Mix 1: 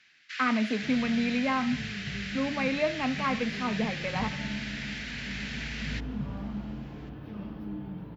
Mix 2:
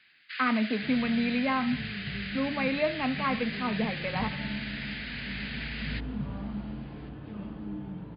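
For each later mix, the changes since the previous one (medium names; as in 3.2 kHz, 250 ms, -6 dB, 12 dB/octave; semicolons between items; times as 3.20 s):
master: add brick-wall FIR low-pass 5 kHz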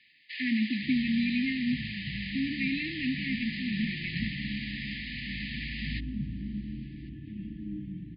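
second sound: add distance through air 160 m; master: add brick-wall FIR band-stop 360–1700 Hz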